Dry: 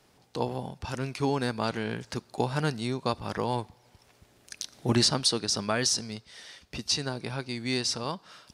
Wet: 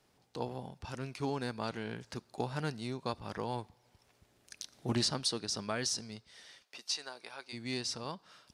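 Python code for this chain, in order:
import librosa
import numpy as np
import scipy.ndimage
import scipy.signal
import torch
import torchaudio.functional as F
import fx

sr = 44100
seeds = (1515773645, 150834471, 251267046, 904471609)

y = fx.highpass(x, sr, hz=640.0, slope=12, at=(6.61, 7.52), fade=0.02)
y = fx.doppler_dist(y, sr, depth_ms=0.14)
y = y * 10.0 ** (-8.0 / 20.0)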